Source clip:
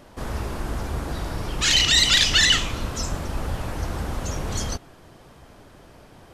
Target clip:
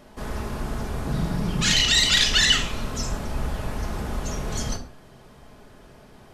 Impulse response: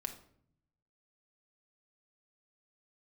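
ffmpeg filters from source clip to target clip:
-filter_complex "[0:a]asettb=1/sr,asplit=3[a][b][c];[a]atrim=end=1.044[d];[b]atrim=start=1.04:end=1.72,asetpts=PTS-STARTPTS,afade=t=in:d=0.004:c=qsin,afade=t=out:st=0.676:d=0.004:c=qsin,equalizer=f=170:t=o:w=1:g=12[e];[c]atrim=start=1.716[f];[d][e]acrossfade=d=0.004:c1=hsin:c2=qsin[g];[g][f]acrossfade=d=0.004:c1=qsin:c2=hsin[h];[1:a]atrim=start_sample=2205,atrim=end_sample=6615[i];[h][i]afir=irnorm=-1:irlink=0"

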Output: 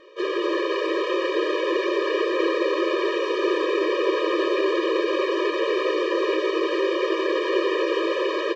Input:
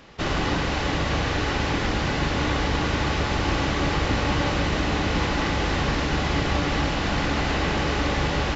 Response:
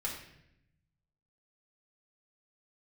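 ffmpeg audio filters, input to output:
-filter_complex "[0:a]lowpass=3k,equalizer=f=290:w=0.9:g=6.5,acontrast=40,asetrate=49501,aresample=44100,atempo=0.890899,asplit=9[a][b][c][d][e][f][g][h][i];[b]adelay=253,afreqshift=67,volume=-6.5dB[j];[c]adelay=506,afreqshift=134,volume=-10.8dB[k];[d]adelay=759,afreqshift=201,volume=-15.1dB[l];[e]adelay=1012,afreqshift=268,volume=-19.4dB[m];[f]adelay=1265,afreqshift=335,volume=-23.7dB[n];[g]adelay=1518,afreqshift=402,volume=-28dB[o];[h]adelay=1771,afreqshift=469,volume=-32.3dB[p];[i]adelay=2024,afreqshift=536,volume=-36.6dB[q];[a][j][k][l][m][n][o][p][q]amix=inputs=9:normalize=0,asplit=2[r][s];[1:a]atrim=start_sample=2205,asetrate=48510,aresample=44100[t];[s][t]afir=irnorm=-1:irlink=0,volume=-8dB[u];[r][u]amix=inputs=2:normalize=0,afftfilt=real='re*eq(mod(floor(b*sr/1024/320),2),1)':imag='im*eq(mod(floor(b*sr/1024/320),2),1)':win_size=1024:overlap=0.75,volume=-6dB"

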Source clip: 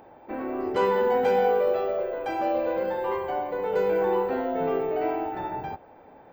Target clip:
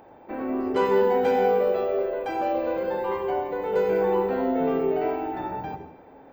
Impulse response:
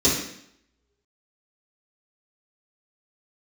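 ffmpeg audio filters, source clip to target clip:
-filter_complex "[0:a]asplit=2[a][b];[1:a]atrim=start_sample=2205,adelay=83[c];[b][c]afir=irnorm=-1:irlink=0,volume=-26dB[d];[a][d]amix=inputs=2:normalize=0"

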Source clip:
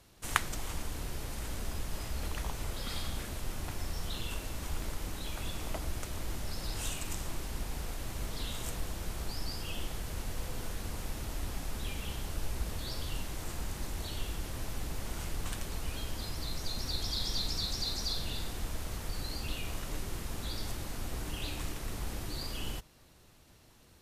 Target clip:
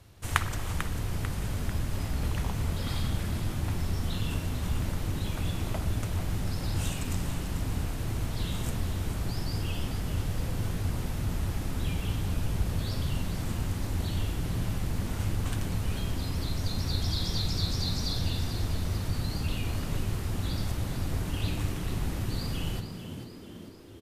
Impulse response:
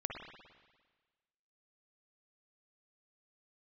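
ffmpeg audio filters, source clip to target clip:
-filter_complex "[0:a]equalizer=f=97:t=o:w=0.8:g=13,asplit=6[a][b][c][d][e][f];[b]adelay=444,afreqshift=82,volume=-10dB[g];[c]adelay=888,afreqshift=164,volume=-16dB[h];[d]adelay=1332,afreqshift=246,volume=-22dB[i];[e]adelay=1776,afreqshift=328,volume=-28.1dB[j];[f]adelay=2220,afreqshift=410,volume=-34.1dB[k];[a][g][h][i][j][k]amix=inputs=6:normalize=0,asplit=2[l][m];[1:a]atrim=start_sample=2205,lowpass=4.4k[n];[m][n]afir=irnorm=-1:irlink=0,volume=-7dB[o];[l][o]amix=inputs=2:normalize=0"

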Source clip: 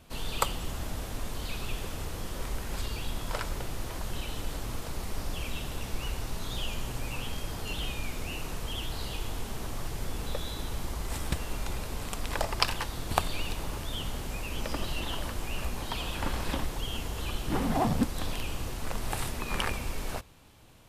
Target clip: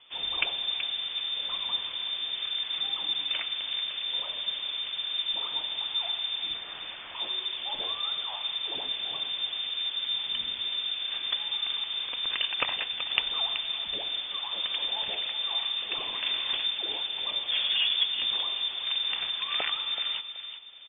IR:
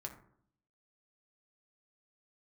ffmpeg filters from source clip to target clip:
-filter_complex "[0:a]asettb=1/sr,asplit=3[a][b][c];[a]atrim=end=6.544[d];[b]atrim=start=6.54:end=7.15,asetpts=PTS-STARTPTS,afade=t=in:d=0.004:c=qsin,afade=t=out:st=0.606:d=0.004:c=qsin,aeval=exprs='(mod(56.2*val(0)+1,2)-1)/56.2':c=same[e];[c]atrim=start=7.146[f];[d][e]acrossfade=d=0.004:c1=hsin:c2=qsin[g];[g][f]acrossfade=d=0.004:c1=qsin:c2=hsin,asplit=2[h][i];[i]adelay=378,lowpass=f=2.5k:p=1,volume=-9dB,asplit=2[j][k];[k]adelay=378,lowpass=f=2.5k:p=1,volume=0.35,asplit=2[l][m];[m]adelay=378,lowpass=f=2.5k:p=1,volume=0.35,asplit=2[n][o];[o]adelay=378,lowpass=f=2.5k:p=1,volume=0.35[p];[h][j][l][n][p]amix=inputs=5:normalize=0,lowpass=f=3.1k:t=q:w=0.5098,lowpass=f=3.1k:t=q:w=0.6013,lowpass=f=3.1k:t=q:w=0.9,lowpass=f=3.1k:t=q:w=2.563,afreqshift=-3600"

